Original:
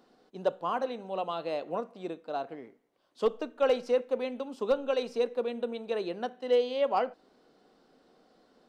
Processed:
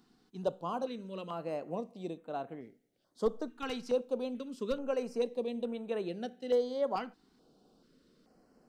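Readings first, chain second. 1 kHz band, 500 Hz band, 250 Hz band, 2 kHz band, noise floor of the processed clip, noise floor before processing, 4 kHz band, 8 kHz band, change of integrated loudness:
−6.5 dB, −5.0 dB, 0.0 dB, −7.0 dB, −71 dBFS, −66 dBFS, −6.0 dB, can't be measured, −5.0 dB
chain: bass and treble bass +10 dB, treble +6 dB
notch on a step sequencer 2.3 Hz 570–4,900 Hz
level −4.5 dB

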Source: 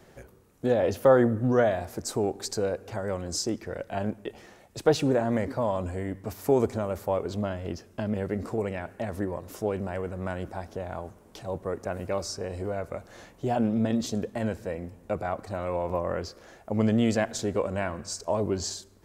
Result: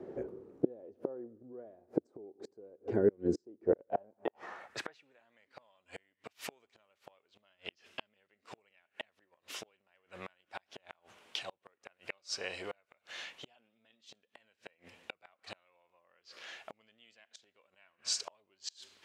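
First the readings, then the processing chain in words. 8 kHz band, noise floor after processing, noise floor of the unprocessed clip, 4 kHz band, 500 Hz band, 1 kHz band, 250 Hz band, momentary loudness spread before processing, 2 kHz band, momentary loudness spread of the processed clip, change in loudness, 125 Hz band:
−9.0 dB, −81 dBFS, −56 dBFS, −4.0 dB, −12.5 dB, −15.5 dB, −14.0 dB, 13 LU, −9.5 dB, 22 LU, −11.0 dB, −20.0 dB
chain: gain on a spectral selection 0:02.90–0:03.44, 490–1,400 Hz −10 dB
gate with flip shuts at −22 dBFS, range −35 dB
band-pass filter sweep 370 Hz → 2,900 Hz, 0:03.68–0:05.20
level +14 dB

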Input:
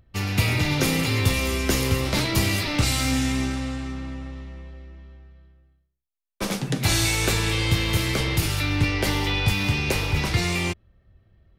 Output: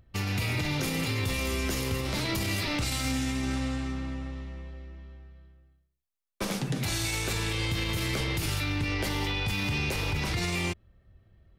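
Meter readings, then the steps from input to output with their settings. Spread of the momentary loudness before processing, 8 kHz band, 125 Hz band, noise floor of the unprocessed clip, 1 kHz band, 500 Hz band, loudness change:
11 LU, −7.0 dB, −7.0 dB, −69 dBFS, −6.0 dB, −6.5 dB, −6.5 dB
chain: brickwall limiter −19.5 dBFS, peak gain reduction 11 dB
level −1.5 dB

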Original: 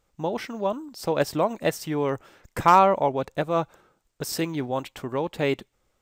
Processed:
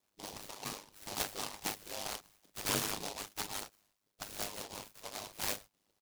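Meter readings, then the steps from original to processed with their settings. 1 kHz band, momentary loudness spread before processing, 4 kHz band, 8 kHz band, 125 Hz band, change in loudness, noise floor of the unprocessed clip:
−21.5 dB, 14 LU, −2.5 dB, +0.5 dB, −18.5 dB, −14.5 dB, −73 dBFS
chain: hearing-aid frequency compression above 1,600 Hz 1.5 to 1
high-shelf EQ 3,800 Hz −5 dB
gate on every frequency bin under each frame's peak −15 dB weak
on a send: ambience of single reflections 27 ms −9 dB, 44 ms −8.5 dB
on the sum: ring modulation 51 Hz
short delay modulated by noise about 4,200 Hz, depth 0.18 ms
level +1 dB

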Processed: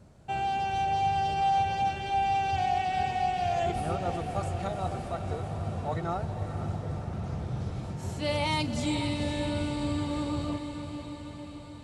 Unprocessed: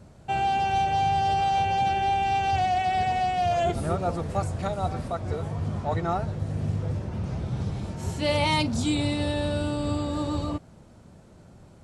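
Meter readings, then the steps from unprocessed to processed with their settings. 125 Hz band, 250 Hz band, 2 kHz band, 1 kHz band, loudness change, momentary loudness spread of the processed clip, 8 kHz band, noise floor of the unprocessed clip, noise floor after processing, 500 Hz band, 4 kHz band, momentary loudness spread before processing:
−4.5 dB, −3.5 dB, −4.0 dB, −3.5 dB, −4.0 dB, 9 LU, −4.0 dB, −51 dBFS, −43 dBFS, −4.5 dB, −4.0 dB, 8 LU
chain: feedback delay with all-pass diffusion 498 ms, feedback 66%, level −8.5 dB
level −5 dB

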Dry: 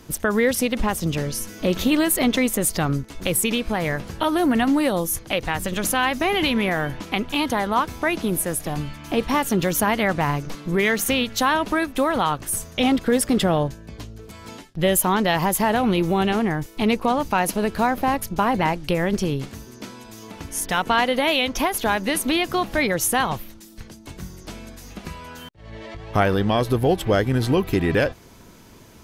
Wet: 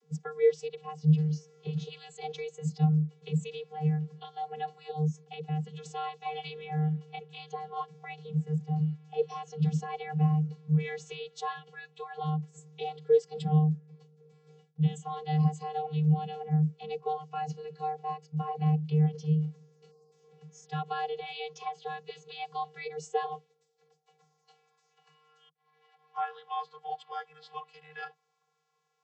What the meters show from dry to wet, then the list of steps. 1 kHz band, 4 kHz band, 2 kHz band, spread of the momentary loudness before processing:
−12.0 dB, −19.5 dB, −21.5 dB, 18 LU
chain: time-frequency box erased 0:19.91–0:20.12, 1,200–4,300 Hz
channel vocoder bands 32, square 153 Hz
parametric band 1,300 Hz −7.5 dB 2.8 octaves
high-pass filter sweep 250 Hz → 1,000 Hz, 0:22.27–0:24.79
noise reduction from a noise print of the clip's start 10 dB
level −2 dB

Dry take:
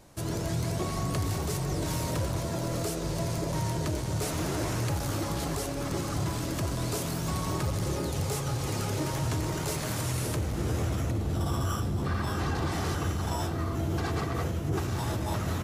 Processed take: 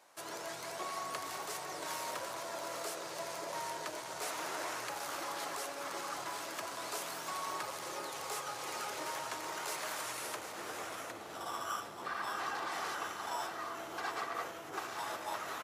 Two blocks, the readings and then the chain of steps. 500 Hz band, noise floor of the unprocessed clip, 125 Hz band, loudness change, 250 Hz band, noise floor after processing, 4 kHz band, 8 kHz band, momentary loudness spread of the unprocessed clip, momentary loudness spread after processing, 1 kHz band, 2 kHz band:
−9.0 dB, −33 dBFS, −33.0 dB, −9.0 dB, −19.0 dB, −46 dBFS, −4.5 dB, −6.0 dB, 1 LU, 4 LU, −2.0 dB, −1.5 dB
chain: high-pass filter 990 Hz 12 dB per octave
high-shelf EQ 2,000 Hz −10 dB
on a send: single-tap delay 760 ms −11 dB
on the sum: level +3 dB

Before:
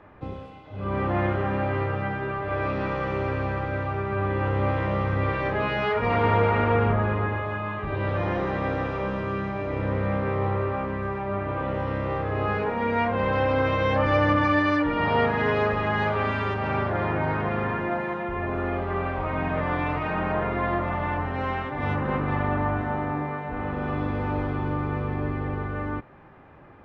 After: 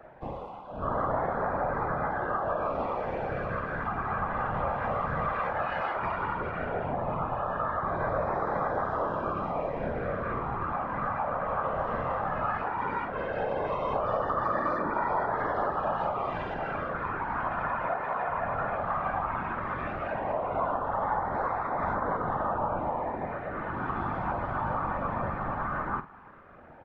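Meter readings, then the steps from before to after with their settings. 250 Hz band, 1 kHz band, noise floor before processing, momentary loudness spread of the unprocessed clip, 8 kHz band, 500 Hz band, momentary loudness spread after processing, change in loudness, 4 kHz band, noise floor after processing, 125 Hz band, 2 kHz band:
−10.0 dB, −1.0 dB, −40 dBFS, 8 LU, can't be measured, −5.0 dB, 4 LU, −5.0 dB, below −10 dB, −40 dBFS, −11.5 dB, −6.5 dB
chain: flat-topped bell 930 Hz +11.5 dB
downward compressor, threshold −21 dBFS, peak gain reduction 12 dB
auto-filter notch sine 0.15 Hz 350–2,900 Hz
random phases in short frames
double-tracking delay 48 ms −12 dB
level −5 dB

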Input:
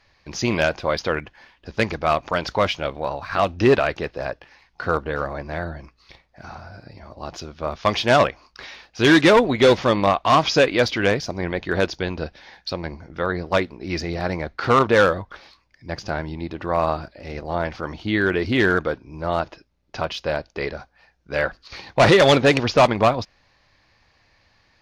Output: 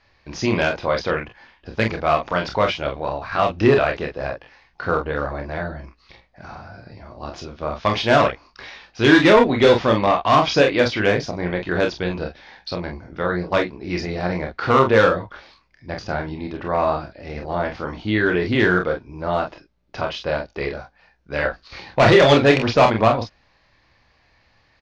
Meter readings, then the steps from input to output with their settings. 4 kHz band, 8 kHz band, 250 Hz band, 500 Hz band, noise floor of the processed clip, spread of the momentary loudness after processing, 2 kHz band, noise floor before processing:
−0.5 dB, can't be measured, +1.5 dB, +1.5 dB, −60 dBFS, 19 LU, +1.0 dB, −62 dBFS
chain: high-frequency loss of the air 80 metres
on a send: ambience of single reflections 28 ms −5.5 dB, 45 ms −7 dB

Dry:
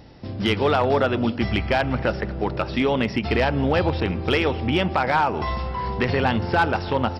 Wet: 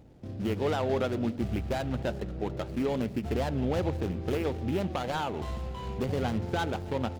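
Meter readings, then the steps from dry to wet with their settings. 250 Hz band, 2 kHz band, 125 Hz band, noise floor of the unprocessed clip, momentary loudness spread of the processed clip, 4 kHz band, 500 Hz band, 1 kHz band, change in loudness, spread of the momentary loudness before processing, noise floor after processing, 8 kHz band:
−7.5 dB, −15.0 dB, −7.0 dB, −32 dBFS, 6 LU, −13.0 dB, −8.5 dB, −12.5 dB, −9.0 dB, 6 LU, −40 dBFS, can't be measured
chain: running median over 25 samples
parametric band 1,000 Hz −5 dB 0.85 octaves
wow of a warped record 45 rpm, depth 100 cents
level −7 dB

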